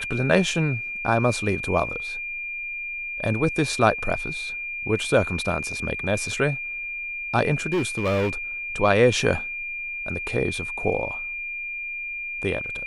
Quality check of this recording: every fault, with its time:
tone 2400 Hz -29 dBFS
7.72–8.33 clipped -19 dBFS

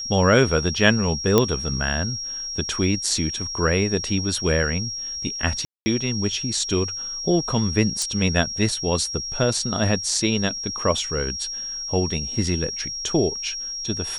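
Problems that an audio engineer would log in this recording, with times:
tone 5600 Hz -28 dBFS
1.38 pop -3 dBFS
5.65–5.86 gap 0.21 s
8.02 pop

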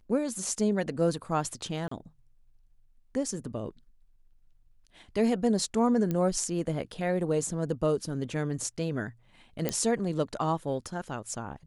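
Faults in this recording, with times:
1.88–1.91 gap 34 ms
6.11 pop -18 dBFS
9.69 pop -13 dBFS

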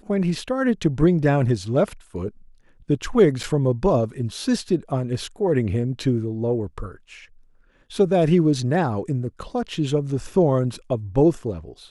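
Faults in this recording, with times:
3.43–3.44 gap 6.3 ms

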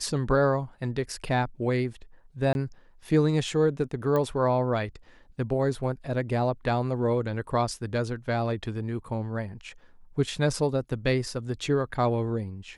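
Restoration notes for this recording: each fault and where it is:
2.53–2.55 gap 21 ms
4.16 pop -16 dBFS

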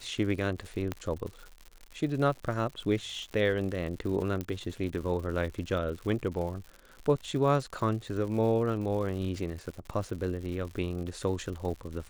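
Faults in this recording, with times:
crackle 140/s -38 dBFS
0.92 pop -18 dBFS
4.41 pop -20 dBFS

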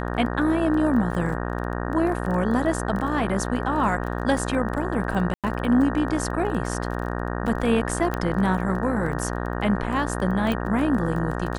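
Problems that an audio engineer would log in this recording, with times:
buzz 60 Hz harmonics 31 -28 dBFS
crackle 19/s -30 dBFS
1.12–1.13 gap 5.8 ms
5.34–5.44 gap 97 ms
8.14 pop -13 dBFS
10.52 pop -15 dBFS

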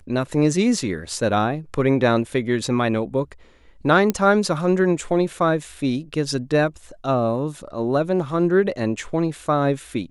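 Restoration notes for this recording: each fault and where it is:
4.1 pop -7 dBFS

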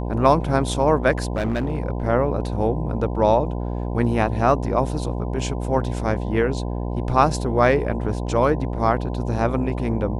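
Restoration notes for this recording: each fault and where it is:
buzz 60 Hz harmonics 17 -26 dBFS
1.18–1.78 clipped -18 dBFS

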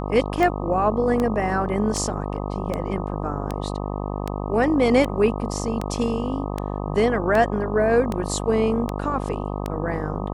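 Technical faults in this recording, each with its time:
buzz 50 Hz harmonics 25 -28 dBFS
tick 78 rpm -12 dBFS

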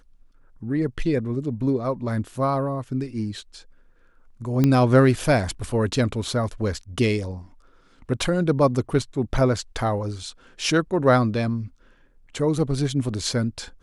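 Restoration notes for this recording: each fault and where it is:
4.64 pop -8 dBFS

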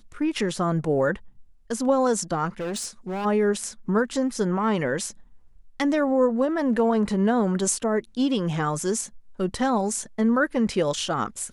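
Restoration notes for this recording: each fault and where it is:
2.59–3.26 clipped -26.5 dBFS

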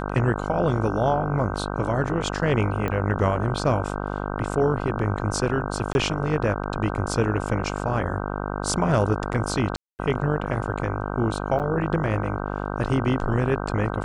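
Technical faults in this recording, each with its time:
buzz 50 Hz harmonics 31 -29 dBFS
2.88 pop -15 dBFS
5.93–5.95 gap 21 ms
9.76–9.99 gap 0.229 s
11.59–11.6 gap 8.6 ms

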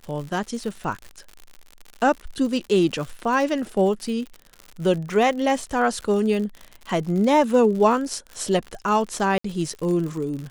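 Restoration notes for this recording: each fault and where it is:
crackle 82/s -30 dBFS
9.38–9.44 gap 64 ms

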